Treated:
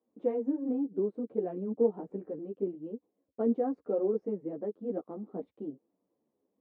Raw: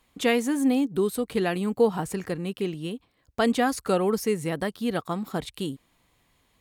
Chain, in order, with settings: Chebyshev shaper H 6 -27 dB, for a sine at -9.5 dBFS; Butterworth band-pass 370 Hz, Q 1.1; three-phase chorus; trim -1 dB

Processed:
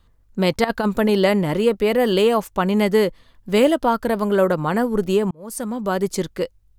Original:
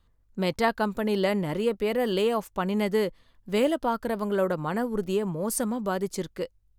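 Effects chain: 0.64–1.10 s: compressor with a negative ratio -26 dBFS, ratio -0.5; 5.31–6.05 s: fade in; trim +8 dB

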